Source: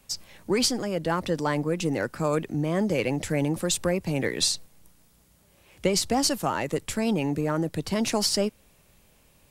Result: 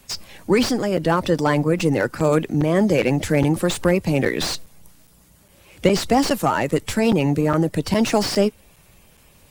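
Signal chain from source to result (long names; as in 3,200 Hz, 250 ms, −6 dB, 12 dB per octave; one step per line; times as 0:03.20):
spectral magnitudes quantised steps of 15 dB
regular buffer underruns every 0.41 s, samples 256, zero, from 0:00.97
slew-rate limiting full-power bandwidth 120 Hz
level +8 dB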